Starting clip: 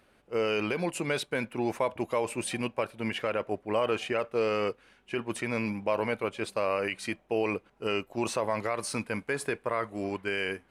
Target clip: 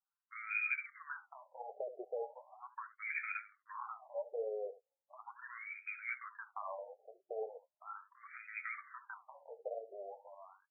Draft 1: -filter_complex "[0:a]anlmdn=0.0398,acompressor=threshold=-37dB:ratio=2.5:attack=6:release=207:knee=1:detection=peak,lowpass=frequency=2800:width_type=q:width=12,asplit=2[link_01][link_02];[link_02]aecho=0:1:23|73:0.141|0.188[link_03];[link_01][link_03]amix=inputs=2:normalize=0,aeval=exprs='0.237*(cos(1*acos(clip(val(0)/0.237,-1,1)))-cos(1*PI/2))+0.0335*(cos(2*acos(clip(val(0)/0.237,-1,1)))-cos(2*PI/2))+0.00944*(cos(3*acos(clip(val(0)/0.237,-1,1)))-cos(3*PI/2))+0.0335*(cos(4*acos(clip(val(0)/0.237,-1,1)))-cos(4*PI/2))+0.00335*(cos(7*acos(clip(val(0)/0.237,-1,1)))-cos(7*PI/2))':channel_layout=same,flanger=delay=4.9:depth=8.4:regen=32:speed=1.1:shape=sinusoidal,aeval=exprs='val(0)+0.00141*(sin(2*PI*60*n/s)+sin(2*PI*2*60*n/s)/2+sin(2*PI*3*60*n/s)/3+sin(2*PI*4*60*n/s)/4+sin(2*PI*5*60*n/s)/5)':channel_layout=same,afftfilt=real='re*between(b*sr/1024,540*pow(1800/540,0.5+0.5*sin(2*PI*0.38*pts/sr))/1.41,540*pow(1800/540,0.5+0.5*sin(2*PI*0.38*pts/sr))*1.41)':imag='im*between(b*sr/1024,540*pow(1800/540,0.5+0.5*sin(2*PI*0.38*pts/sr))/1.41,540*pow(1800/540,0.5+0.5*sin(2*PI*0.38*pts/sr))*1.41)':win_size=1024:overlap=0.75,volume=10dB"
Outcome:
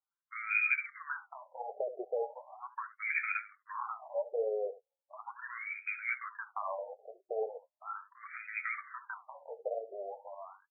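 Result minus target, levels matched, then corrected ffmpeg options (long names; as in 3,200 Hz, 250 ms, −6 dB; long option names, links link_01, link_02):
downward compressor: peak gain reduction −6 dB
-filter_complex "[0:a]anlmdn=0.0398,acompressor=threshold=-47dB:ratio=2.5:attack=6:release=207:knee=1:detection=peak,lowpass=frequency=2800:width_type=q:width=12,asplit=2[link_01][link_02];[link_02]aecho=0:1:23|73:0.141|0.188[link_03];[link_01][link_03]amix=inputs=2:normalize=0,aeval=exprs='0.237*(cos(1*acos(clip(val(0)/0.237,-1,1)))-cos(1*PI/2))+0.0335*(cos(2*acos(clip(val(0)/0.237,-1,1)))-cos(2*PI/2))+0.00944*(cos(3*acos(clip(val(0)/0.237,-1,1)))-cos(3*PI/2))+0.0335*(cos(4*acos(clip(val(0)/0.237,-1,1)))-cos(4*PI/2))+0.00335*(cos(7*acos(clip(val(0)/0.237,-1,1)))-cos(7*PI/2))':channel_layout=same,flanger=delay=4.9:depth=8.4:regen=32:speed=1.1:shape=sinusoidal,aeval=exprs='val(0)+0.00141*(sin(2*PI*60*n/s)+sin(2*PI*2*60*n/s)/2+sin(2*PI*3*60*n/s)/3+sin(2*PI*4*60*n/s)/4+sin(2*PI*5*60*n/s)/5)':channel_layout=same,afftfilt=real='re*between(b*sr/1024,540*pow(1800/540,0.5+0.5*sin(2*PI*0.38*pts/sr))/1.41,540*pow(1800/540,0.5+0.5*sin(2*PI*0.38*pts/sr))*1.41)':imag='im*between(b*sr/1024,540*pow(1800/540,0.5+0.5*sin(2*PI*0.38*pts/sr))/1.41,540*pow(1800/540,0.5+0.5*sin(2*PI*0.38*pts/sr))*1.41)':win_size=1024:overlap=0.75,volume=10dB"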